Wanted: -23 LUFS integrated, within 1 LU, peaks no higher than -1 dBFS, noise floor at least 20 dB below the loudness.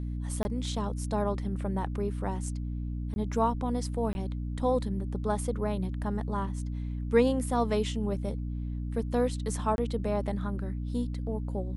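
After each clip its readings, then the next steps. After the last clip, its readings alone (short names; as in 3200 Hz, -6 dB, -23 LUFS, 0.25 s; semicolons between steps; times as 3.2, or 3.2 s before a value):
dropouts 4; longest dropout 21 ms; hum 60 Hz; harmonics up to 300 Hz; hum level -31 dBFS; loudness -31.5 LUFS; peak -11.0 dBFS; loudness target -23.0 LUFS
-> interpolate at 0.43/3.14/4.13/9.76, 21 ms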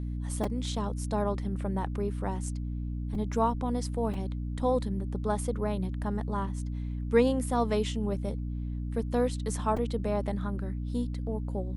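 dropouts 0; hum 60 Hz; harmonics up to 300 Hz; hum level -31 dBFS
-> notches 60/120/180/240/300 Hz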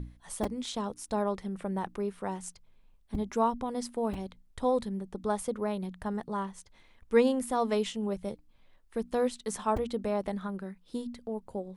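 hum none; loudness -33.0 LUFS; peak -12.0 dBFS; loudness target -23.0 LUFS
-> gain +10 dB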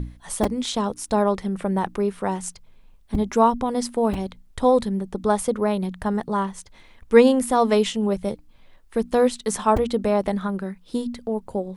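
loudness -23.0 LUFS; peak -2.0 dBFS; noise floor -52 dBFS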